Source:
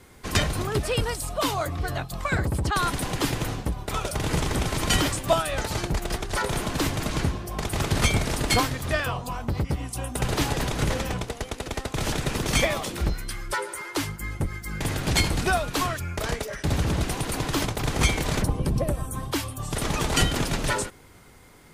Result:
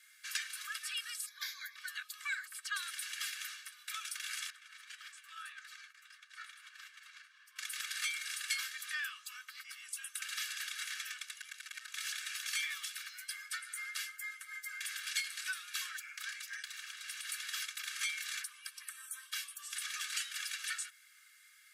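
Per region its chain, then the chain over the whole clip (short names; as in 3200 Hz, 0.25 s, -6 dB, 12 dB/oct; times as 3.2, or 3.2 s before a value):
1.26–1.76 resonant low shelf 510 Hz -14 dB, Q 3 + fixed phaser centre 1900 Hz, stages 8
4.5–7.56 tilt -4 dB/oct + flange 1.7 Hz, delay 3.8 ms, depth 9.9 ms, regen -38% + compressor 10:1, threshold -19 dBFS
11.4–11.88 HPF 69 Hz 24 dB/oct + core saturation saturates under 1600 Hz
15.9–17.25 compressor 2.5:1, threshold -28 dBFS + Doppler distortion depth 0.15 ms
whole clip: steep high-pass 1300 Hz 96 dB/oct; compressor 2:1, threshold -33 dBFS; comb 1.8 ms, depth 75%; gain -7 dB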